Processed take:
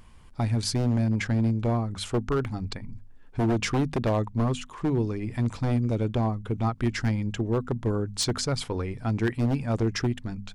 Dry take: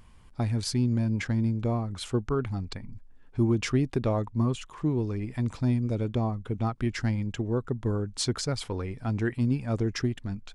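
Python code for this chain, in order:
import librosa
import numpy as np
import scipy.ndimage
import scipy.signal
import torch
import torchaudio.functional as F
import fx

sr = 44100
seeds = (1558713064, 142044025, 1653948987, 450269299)

y = 10.0 ** (-20.5 / 20.0) * (np.abs((x / 10.0 ** (-20.5 / 20.0) + 3.0) % 4.0 - 2.0) - 1.0)
y = fx.hum_notches(y, sr, base_hz=50, count=5)
y = F.gain(torch.from_numpy(y), 3.0).numpy()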